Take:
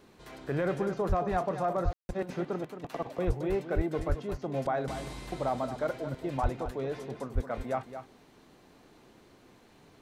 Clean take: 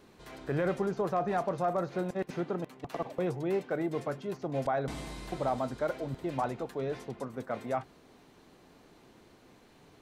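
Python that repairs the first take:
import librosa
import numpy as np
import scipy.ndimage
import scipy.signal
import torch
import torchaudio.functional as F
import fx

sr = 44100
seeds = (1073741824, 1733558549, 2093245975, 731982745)

y = fx.fix_deplosive(x, sr, at_s=(1.08, 1.84, 3.26, 3.75, 4.08, 6.42, 7.34))
y = fx.fix_ambience(y, sr, seeds[0], print_start_s=8.17, print_end_s=8.67, start_s=1.93, end_s=2.09)
y = fx.fix_echo_inverse(y, sr, delay_ms=222, level_db=-10.0)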